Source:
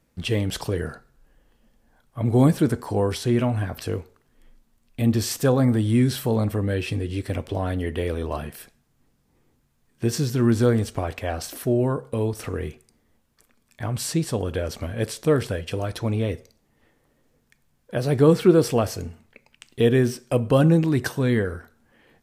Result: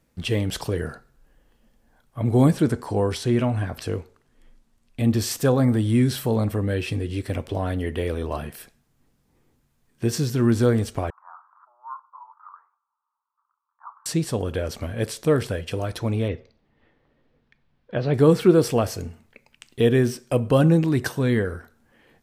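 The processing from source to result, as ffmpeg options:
ffmpeg -i in.wav -filter_complex "[0:a]asettb=1/sr,asplit=3[link_01][link_02][link_03];[link_01]atrim=end=2.514[link_04];[link_02]atrim=start=2.51:end=5.07,asetpts=PTS-STARTPTS,afade=type=in:duration=0.004:curve=qsin,afade=type=out:start_time=2.556:duration=0.004:curve=qsin,lowpass=11000[link_05];[link_03]atrim=start=5.066[link_06];[link_04][link_05]acrossfade=duration=0.004:curve1=hsin:curve2=qsin[link_07];[link_07][link_06]acrossfade=duration=0.004:curve1=qsin:curve2=hsin,asettb=1/sr,asplit=3[link_08][link_09][link_10];[link_08]atrim=end=11.104[link_11];[link_09]atrim=start=11.1:end=14.06,asetpts=PTS-STARTPTS,afade=type=in:duration=0.004:curve=qsin,afade=type=out:start_time=2.956:duration=0.004:curve=qsin,asuperpass=centerf=1100:order=8:qfactor=2.4[link_12];[link_10]atrim=start=14.056[link_13];[link_11][link_12]acrossfade=duration=0.004:curve1=hsin:curve2=qsin[link_14];[link_14][link_13]acrossfade=duration=0.004:curve1=qsin:curve2=hsin,asettb=1/sr,asplit=3[link_15][link_16][link_17];[link_15]atrim=end=16.284[link_18];[link_16]atrim=start=16.28:end=18.14,asetpts=PTS-STARTPTS,afade=type=in:duration=0.004:curve=qsin,afade=type=out:start_time=1.856:duration=0.004:curve=qsin,lowpass=frequency=4100:width=0.5412,lowpass=frequency=4100:width=1.3066[link_19];[link_17]atrim=start=18.136[link_20];[link_18][link_19]acrossfade=duration=0.004:curve1=hsin:curve2=qsin[link_21];[link_21][link_20]acrossfade=duration=0.004:curve1=qsin:curve2=hsin" out.wav

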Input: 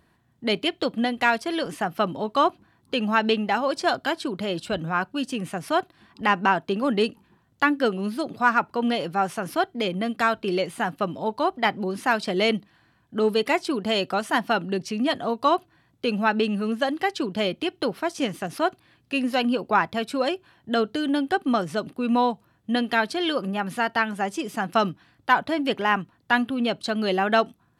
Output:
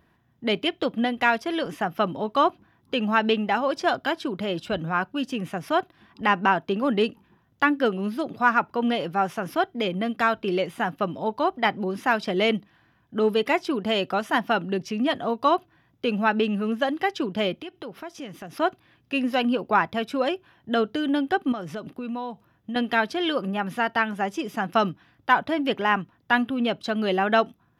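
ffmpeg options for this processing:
ffmpeg -i in.wav -filter_complex "[0:a]asettb=1/sr,asplit=3[link_01][link_02][link_03];[link_01]atrim=end=17.614[link_04];[link_02]atrim=start=17.61:end=18.57,asetpts=PTS-STARTPTS,afade=type=in:duration=0.004:curve=qsin,afade=type=out:start_time=0.956:duration=0.004:curve=qsin,acompressor=threshold=-38dB:ratio=2.5:attack=3.2:release=140:knee=1:detection=peak[link_05];[link_03]atrim=start=18.566[link_06];[link_04][link_05]acrossfade=duration=0.004:curve1=hsin:curve2=qsin[link_07];[link_07][link_06]acrossfade=duration=0.004:curve1=qsin:curve2=hsin,asettb=1/sr,asplit=3[link_08][link_09][link_10];[link_08]atrim=end=21.524[link_11];[link_09]atrim=start=21.52:end=22.76,asetpts=PTS-STARTPTS,afade=type=in:duration=0.004:curve=qsin,afade=type=out:start_time=1.236:duration=0.004:curve=qsin,acompressor=threshold=-30dB:ratio=4:attack=3.2:release=140:knee=1:detection=peak[link_12];[link_10]atrim=start=22.756[link_13];[link_11][link_12]acrossfade=duration=0.004:curve1=hsin:curve2=qsin[link_14];[link_14][link_13]acrossfade=duration=0.004:curve1=qsin:curve2=hsin,equalizer=frequency=8600:width_type=o:width=0.61:gain=-11.5,bandreject=frequency=4300:width=8.1" out.wav

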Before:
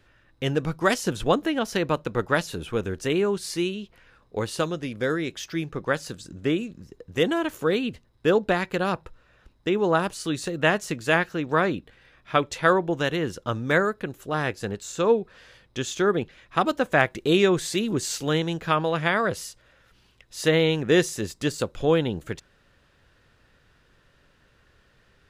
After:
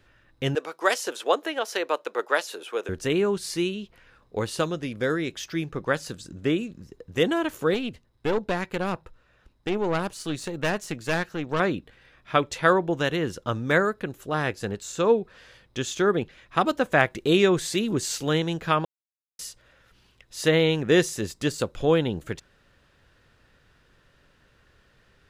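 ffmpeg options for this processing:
ffmpeg -i in.wav -filter_complex "[0:a]asettb=1/sr,asplit=3[link_01][link_02][link_03];[link_01]atrim=end=0.554[link_04];[link_02]atrim=start=0.55:end=2.89,asetpts=PTS-STARTPTS,afade=type=in:duration=0.004:curve=qsin,afade=type=out:start_time=2.336:duration=0.004:curve=qsin,highpass=frequency=400:width=0.5412,highpass=frequency=400:width=1.3066[link_05];[link_03]atrim=start=2.886[link_06];[link_04][link_05]acrossfade=duration=0.004:curve1=hsin:curve2=qsin[link_07];[link_07][link_06]acrossfade=duration=0.004:curve1=qsin:curve2=hsin,asettb=1/sr,asplit=3[link_08][link_09][link_10];[link_08]atrim=end=7.744[link_11];[link_09]atrim=start=7.74:end=11.6,asetpts=PTS-STARTPTS,afade=type=in:duration=0.004:curve=qsin,afade=type=out:start_time=3.856:duration=0.004:curve=qsin,aeval=exprs='(tanh(8.91*val(0)+0.6)-tanh(0.6))/8.91':channel_layout=same[link_12];[link_10]atrim=start=11.596[link_13];[link_11][link_12]acrossfade=duration=0.004:curve1=hsin:curve2=qsin[link_14];[link_14][link_13]acrossfade=duration=0.004:curve1=qsin:curve2=hsin,asplit=3[link_15][link_16][link_17];[link_15]atrim=end=18.85,asetpts=PTS-STARTPTS,afade=type=out:start_time=18.846:duration=0.004:curve=hsin[link_18];[link_16]atrim=start=18.85:end=19.39,asetpts=PTS-STARTPTS,volume=0[link_19];[link_17]atrim=start=19.39,asetpts=PTS-STARTPTS,afade=type=in:duration=0.004:curve=hsin[link_20];[link_18][link_19][link_20]concat=n=3:v=0:a=1" out.wav

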